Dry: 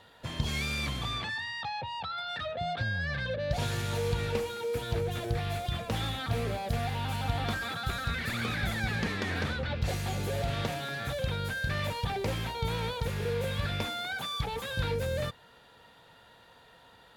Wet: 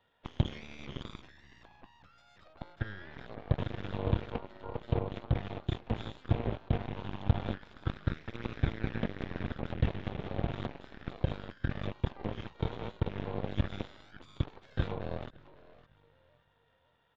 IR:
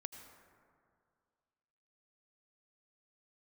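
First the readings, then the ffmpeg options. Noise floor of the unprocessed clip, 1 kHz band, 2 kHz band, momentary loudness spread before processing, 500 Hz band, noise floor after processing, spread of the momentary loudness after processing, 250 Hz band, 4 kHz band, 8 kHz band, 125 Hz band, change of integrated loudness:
-58 dBFS, -9.0 dB, -12.5 dB, 3 LU, -6.5 dB, -70 dBFS, 12 LU, -0.5 dB, -13.5 dB, under -20 dB, -2.0 dB, -4.5 dB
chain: -filter_complex "[0:a]asplit=2[a][b];[b]adelay=560,lowpass=f=2k:p=1,volume=-10dB,asplit=2[c][d];[d]adelay=560,lowpass=f=2k:p=1,volume=0.35,asplit=2[e][f];[f]adelay=560,lowpass=f=2k:p=1,volume=0.35,asplit=2[g][h];[h]adelay=560,lowpass=f=2k:p=1,volume=0.35[i];[a][c][e][g][i]amix=inputs=5:normalize=0,aresample=8000,aresample=44100,acrossover=split=410[j][k];[k]acompressor=threshold=-46dB:ratio=6[l];[j][l]amix=inputs=2:normalize=0,aeval=exprs='0.15*(cos(1*acos(clip(val(0)/0.15,-1,1)))-cos(1*PI/2))+0.0119*(cos(6*acos(clip(val(0)/0.15,-1,1)))-cos(6*PI/2))+0.0237*(cos(7*acos(clip(val(0)/0.15,-1,1)))-cos(7*PI/2))':c=same,volume=3.5dB"

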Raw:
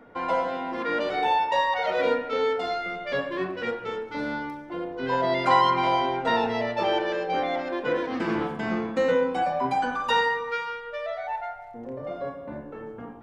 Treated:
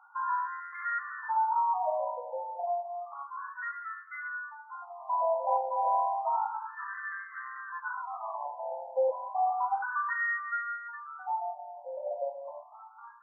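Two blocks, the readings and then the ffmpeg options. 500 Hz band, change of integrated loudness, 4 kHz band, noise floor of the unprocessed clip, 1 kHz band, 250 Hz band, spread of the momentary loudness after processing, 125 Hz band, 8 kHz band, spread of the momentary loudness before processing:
-9.0 dB, -6.5 dB, under -40 dB, -41 dBFS, -4.5 dB, under -40 dB, 13 LU, under -40 dB, n/a, 12 LU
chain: -af "asoftclip=type=tanh:threshold=-19.5dB,afftfilt=real='re*between(b*sr/1024,700*pow(1500/700,0.5+0.5*sin(2*PI*0.31*pts/sr))/1.41,700*pow(1500/700,0.5+0.5*sin(2*PI*0.31*pts/sr))*1.41)':imag='im*between(b*sr/1024,700*pow(1500/700,0.5+0.5*sin(2*PI*0.31*pts/sr))/1.41,700*pow(1500/700,0.5+0.5*sin(2*PI*0.31*pts/sr))*1.41)':win_size=1024:overlap=0.75"

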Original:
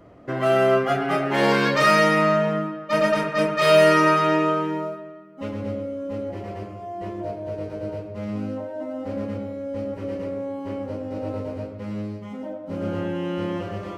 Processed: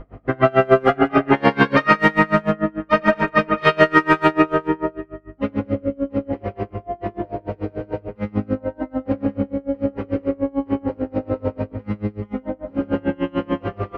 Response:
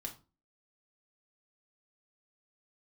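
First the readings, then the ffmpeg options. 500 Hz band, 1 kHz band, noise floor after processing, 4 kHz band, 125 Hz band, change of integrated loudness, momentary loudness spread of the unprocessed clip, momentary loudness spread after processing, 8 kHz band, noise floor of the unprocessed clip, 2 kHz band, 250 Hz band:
+1.0 dB, +3.0 dB, -49 dBFS, -2.5 dB, +3.5 dB, +2.5 dB, 16 LU, 14 LU, under -10 dB, -38 dBFS, +3.5 dB, +5.5 dB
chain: -filter_complex "[0:a]lowpass=2.5k,bandreject=f=47.8:t=h:w=4,bandreject=f=95.6:t=h:w=4,bandreject=f=143.4:t=h:w=4,bandreject=f=191.2:t=h:w=4,bandreject=f=239:t=h:w=4,bandreject=f=286.8:t=h:w=4,bandreject=f=334.6:t=h:w=4,bandreject=f=382.4:t=h:w=4,bandreject=f=430.2:t=h:w=4,bandreject=f=478:t=h:w=4,bandreject=f=525.8:t=h:w=4,bandreject=f=573.6:t=h:w=4,bandreject=f=621.4:t=h:w=4,bandreject=f=669.2:t=h:w=4,aeval=exprs='val(0)+0.00501*(sin(2*PI*50*n/s)+sin(2*PI*2*50*n/s)/2+sin(2*PI*3*50*n/s)/3+sin(2*PI*4*50*n/s)/4+sin(2*PI*5*50*n/s)/5)':c=same,asplit=2[a][b];[b]adelay=150,highpass=300,lowpass=3.4k,asoftclip=type=hard:threshold=-15.5dB,volume=-11dB[c];[a][c]amix=inputs=2:normalize=0,asplit=2[d][e];[1:a]atrim=start_sample=2205[f];[e][f]afir=irnorm=-1:irlink=0,volume=-1dB[g];[d][g]amix=inputs=2:normalize=0,alimiter=level_in=7.5dB:limit=-1dB:release=50:level=0:latency=1,aeval=exprs='val(0)*pow(10,-29*(0.5-0.5*cos(2*PI*6.8*n/s))/20)':c=same"

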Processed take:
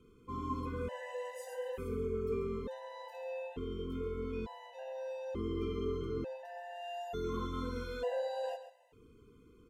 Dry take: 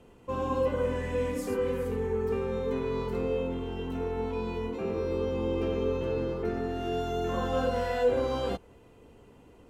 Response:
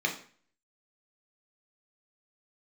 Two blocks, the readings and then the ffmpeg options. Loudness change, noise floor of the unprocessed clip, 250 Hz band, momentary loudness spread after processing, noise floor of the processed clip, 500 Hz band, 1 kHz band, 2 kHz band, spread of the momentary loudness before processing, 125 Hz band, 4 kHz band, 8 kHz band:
-9.0 dB, -56 dBFS, -8.5 dB, 9 LU, -62 dBFS, -9.5 dB, -8.0 dB, -8.5 dB, 6 LU, -8.0 dB, -8.0 dB, n/a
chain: -af "aecho=1:1:135|270:0.266|0.0426,afftfilt=real='re*gt(sin(2*PI*0.56*pts/sr)*(1-2*mod(floor(b*sr/1024/510),2)),0)':imag='im*gt(sin(2*PI*0.56*pts/sr)*(1-2*mod(floor(b*sr/1024/510),2)),0)':win_size=1024:overlap=0.75,volume=-5.5dB"

